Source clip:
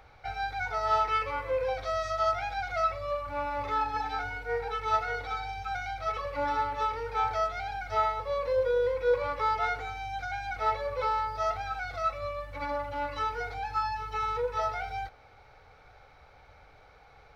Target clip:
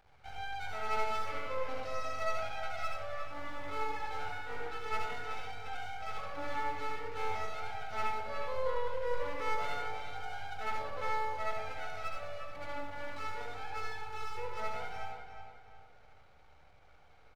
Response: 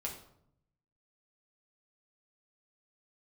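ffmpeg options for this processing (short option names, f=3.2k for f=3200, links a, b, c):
-filter_complex "[0:a]aeval=exprs='max(val(0),0)':c=same,asplit=2[a][b];[b]adelay=359,lowpass=f=4.4k:p=1,volume=-8dB,asplit=2[c][d];[d]adelay=359,lowpass=f=4.4k:p=1,volume=0.38,asplit=2[e][f];[f]adelay=359,lowpass=f=4.4k:p=1,volume=0.38,asplit=2[g][h];[h]adelay=359,lowpass=f=4.4k:p=1,volume=0.38[i];[a][c][e][g][i]amix=inputs=5:normalize=0,asplit=2[j][k];[1:a]atrim=start_sample=2205,adelay=71[l];[k][l]afir=irnorm=-1:irlink=0,volume=-0.5dB[m];[j][m]amix=inputs=2:normalize=0,volume=-7.5dB"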